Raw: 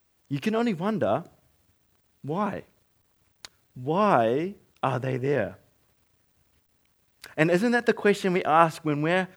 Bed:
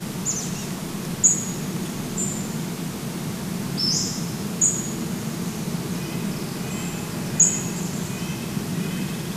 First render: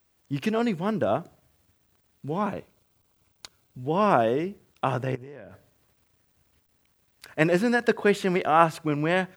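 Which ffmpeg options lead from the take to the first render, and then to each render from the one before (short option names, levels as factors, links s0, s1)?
-filter_complex "[0:a]asettb=1/sr,asplit=3[s0][s1][s2];[s0]atrim=end=2.504[s3];[s1]atrim=start=2.5:end=3.8,asetpts=PTS-STARTPTS,afade=t=in:d=0.004:c=qsin,afade=t=out:st=1.296:d=0.004:c=qsin,bandreject=f=1800:w=5.1[s4];[s2]atrim=start=3.796[s5];[s3][s4]acrossfade=d=0.004:c1=hsin:c2=qsin[s6];[s6][s5]acrossfade=d=0.004:c1=qsin:c2=hsin,asettb=1/sr,asplit=3[s7][s8][s9];[s7]atrim=end=5.154[s10];[s8]atrim=start=5.15:end=7.35,asetpts=PTS-STARTPTS,afade=t=in:d=0.004:c=qsin,afade=t=out:st=2.196:d=0.004:c=qsin,acompressor=threshold=0.0126:ratio=16:attack=3.2:release=140:knee=1:detection=peak[s11];[s9]atrim=start=7.346[s12];[s10][s11]acrossfade=d=0.004:c1=hsin:c2=qsin[s13];[s13][s12]acrossfade=d=0.004:c1=qsin:c2=hsin"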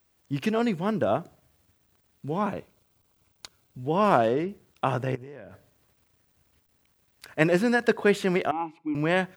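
-filter_complex "[0:a]asettb=1/sr,asplit=3[s0][s1][s2];[s0]atrim=end=4.044[s3];[s1]atrim=start=4.04:end=4.49,asetpts=PTS-STARTPTS,afade=t=in:d=0.004:c=qsin,afade=t=out:st=0.446:d=0.004:c=qsin,adynamicsmooth=sensitivity=7.5:basefreq=2400[s4];[s2]atrim=start=4.486[s5];[s3][s4]acrossfade=d=0.004:c1=hsin:c2=qsin[s6];[s6][s5]acrossfade=d=0.004:c1=qsin:c2=hsin,asettb=1/sr,asplit=3[s7][s8][s9];[s7]atrim=end=8.514[s10];[s8]atrim=start=8.51:end=8.95,asetpts=PTS-STARTPTS,afade=t=in:d=0.004:c=qsin,afade=t=out:st=0.436:d=0.004:c=qsin,asplit=3[s11][s12][s13];[s11]bandpass=f=300:t=q:w=8,volume=1[s14];[s12]bandpass=f=870:t=q:w=8,volume=0.501[s15];[s13]bandpass=f=2240:t=q:w=8,volume=0.355[s16];[s14][s15][s16]amix=inputs=3:normalize=0[s17];[s9]atrim=start=8.946[s18];[s10][s17]acrossfade=d=0.004:c1=hsin:c2=qsin[s19];[s19][s18]acrossfade=d=0.004:c1=qsin:c2=hsin"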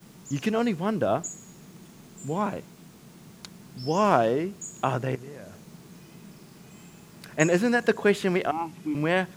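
-filter_complex "[1:a]volume=0.1[s0];[0:a][s0]amix=inputs=2:normalize=0"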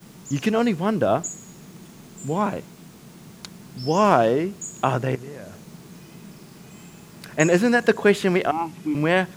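-af "volume=1.68,alimiter=limit=0.708:level=0:latency=1"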